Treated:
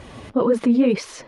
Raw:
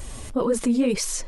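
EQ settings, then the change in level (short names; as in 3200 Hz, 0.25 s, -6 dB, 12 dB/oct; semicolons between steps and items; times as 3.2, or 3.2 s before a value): HPF 120 Hz 12 dB/oct; air absorption 250 m; bell 9900 Hz +11.5 dB 0.4 oct; +5.0 dB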